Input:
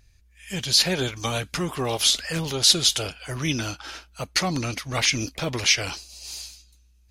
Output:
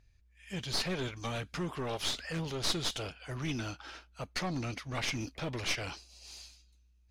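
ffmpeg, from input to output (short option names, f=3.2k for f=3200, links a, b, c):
-af "aeval=exprs='clip(val(0),-1,0.0562)':c=same,aemphasis=mode=reproduction:type=50kf,volume=-7.5dB"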